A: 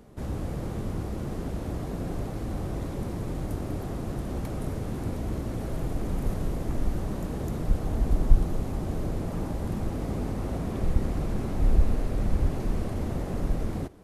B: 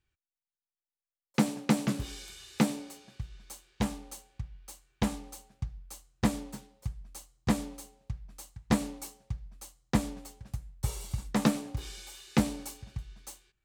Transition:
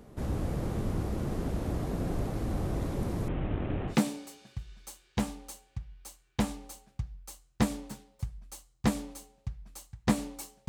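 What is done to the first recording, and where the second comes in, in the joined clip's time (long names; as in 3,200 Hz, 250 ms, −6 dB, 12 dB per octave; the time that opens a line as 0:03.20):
A
0:03.28–0:03.97: variable-slope delta modulation 16 kbit/s
0:03.92: continue with B from 0:02.55, crossfade 0.10 s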